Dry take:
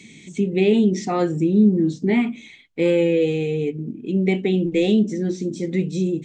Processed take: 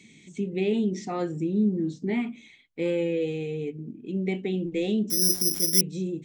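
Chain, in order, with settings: 5.1–5.81 careless resampling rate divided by 8×, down none, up zero stuff; gain -8.5 dB

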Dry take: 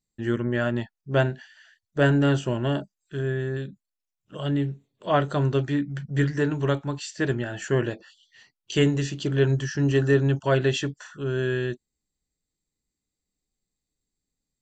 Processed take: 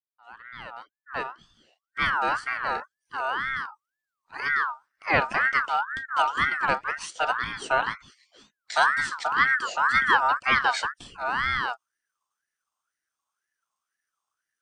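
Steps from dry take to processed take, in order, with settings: opening faded in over 3.65 s; ring modulator with a swept carrier 1400 Hz, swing 25%, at 2 Hz; gain +2 dB

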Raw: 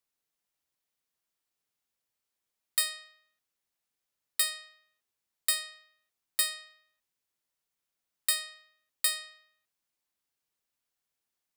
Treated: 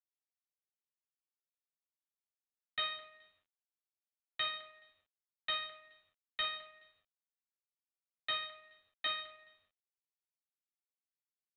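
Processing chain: on a send: feedback echo 0.212 s, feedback 24%, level -18 dB; on the sum: shoebox room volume 98 m³, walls mixed, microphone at 0.98 m; dynamic EQ 1500 Hz, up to +5 dB, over -51 dBFS, Q 4.2; gain -3 dB; G.726 32 kbps 8000 Hz

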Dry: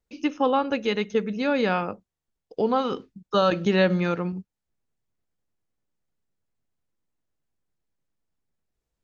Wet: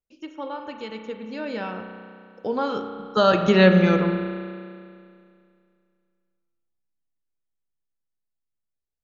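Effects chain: Doppler pass-by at 3.64, 19 m/s, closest 10 m; spring tank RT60 2.3 s, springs 32 ms, chirp 40 ms, DRR 5.5 dB; gain +4.5 dB

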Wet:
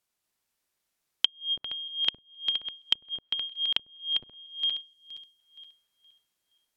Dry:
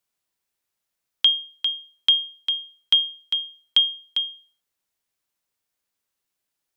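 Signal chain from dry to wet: regenerating reverse delay 0.235 s, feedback 52%, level -3.5 dB; spectral gain 4.81–5.39, 410–4100 Hz -6 dB; treble ducked by the level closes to 360 Hz, closed at -14.5 dBFS

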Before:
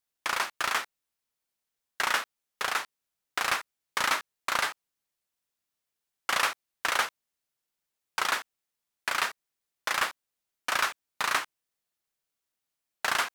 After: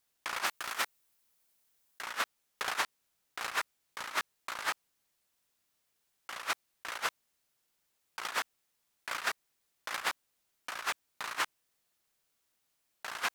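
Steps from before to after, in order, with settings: 0.46–2.02 high shelf 8500 Hz +7.5 dB; negative-ratio compressor -34 dBFS, ratio -0.5

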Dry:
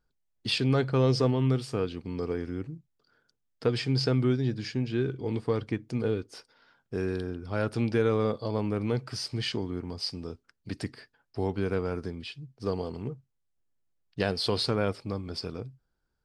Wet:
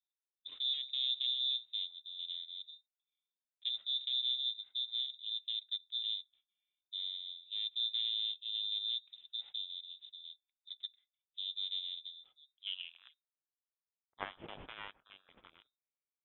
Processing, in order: added harmonics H 3 -12 dB, 8 -22 dB, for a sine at -11 dBFS; band-pass sweep 220 Hz -> 3000 Hz, 12.17–13.27; inverted band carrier 3800 Hz; gain +1.5 dB

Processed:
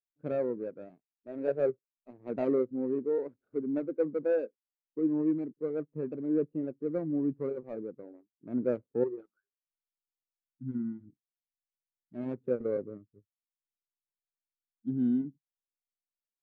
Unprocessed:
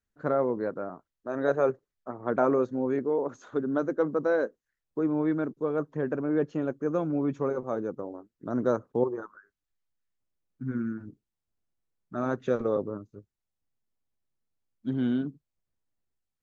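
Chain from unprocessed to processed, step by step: median filter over 41 samples; spectral expander 1.5:1; gain -2 dB

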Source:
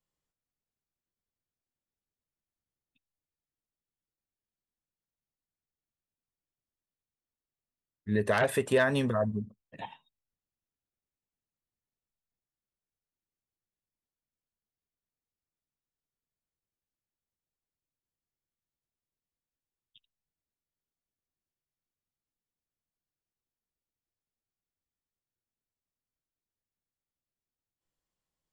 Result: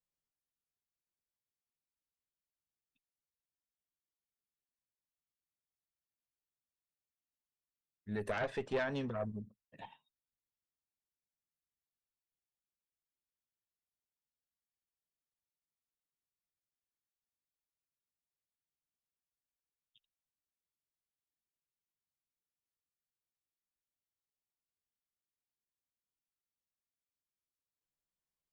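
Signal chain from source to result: 8.31–9.17 Chebyshev low-pass 5500 Hz, order 3; tube stage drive 19 dB, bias 0.6; gain -6.5 dB

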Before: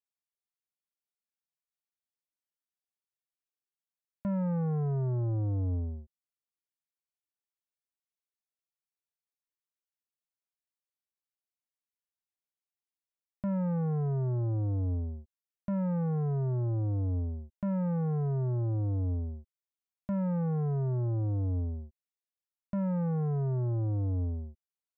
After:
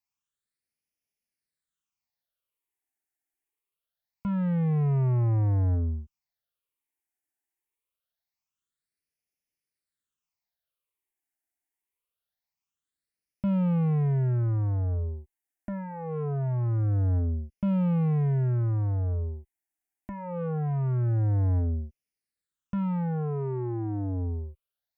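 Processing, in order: phaser stages 8, 0.24 Hz, lowest notch 150–1200 Hz; added harmonics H 5 -19 dB, 7 -25 dB, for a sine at -27 dBFS; gain +5.5 dB

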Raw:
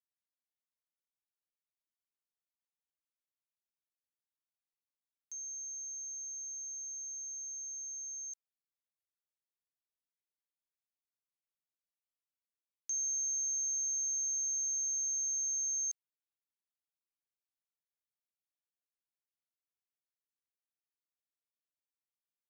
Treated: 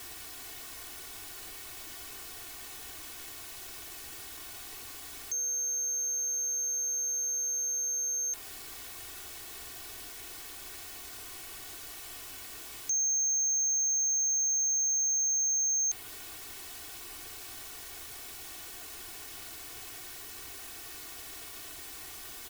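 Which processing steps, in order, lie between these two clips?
zero-crossing step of -46.5 dBFS; tone controls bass +5 dB, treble -2 dB; comb 2.7 ms, depth 91%; dynamic EQ 6000 Hz, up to -5 dB, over -46 dBFS, Q 2.1; sample leveller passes 2; gain +4.5 dB

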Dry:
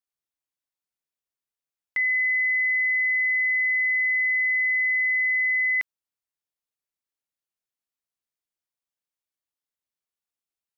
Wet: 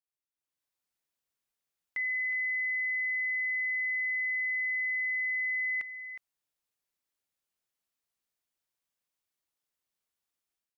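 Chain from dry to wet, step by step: limiter -31.5 dBFS, peak gain reduction 11.5 dB; AGC gain up to 11.5 dB; on a send: echo 0.364 s -10.5 dB; on the sum: gain -8.5 dB

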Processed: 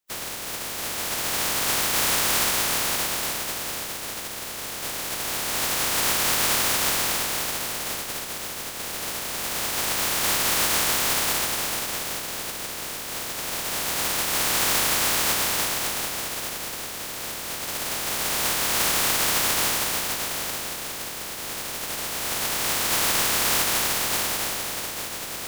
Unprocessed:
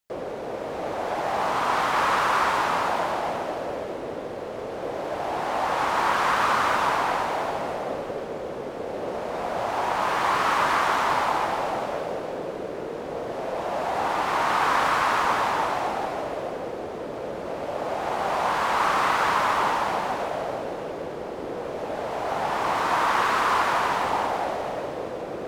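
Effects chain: spectral contrast lowered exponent 0.14

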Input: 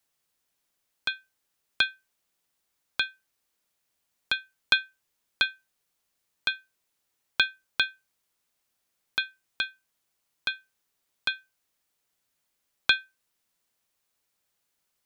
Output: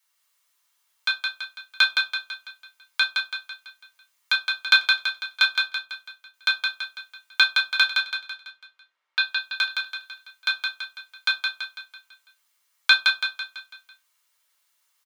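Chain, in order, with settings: 7.84–9.2 low-pass opened by the level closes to 2100 Hz, open at -39.5 dBFS; Chebyshev high-pass 1200 Hz, order 2; 5.44–6.5 step gate ".xx..xx." 135 bpm; feedback echo 0.166 s, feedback 48%, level -4 dB; reverb RT60 0.25 s, pre-delay 3 ms, DRR -1 dB; gain +3 dB

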